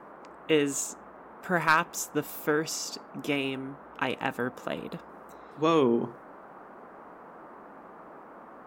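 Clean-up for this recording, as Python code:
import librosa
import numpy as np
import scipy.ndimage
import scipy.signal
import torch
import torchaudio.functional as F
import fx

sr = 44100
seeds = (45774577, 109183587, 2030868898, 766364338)

y = fx.fix_declip(x, sr, threshold_db=-11.5)
y = fx.noise_reduce(y, sr, print_start_s=0.94, print_end_s=1.44, reduce_db=24.0)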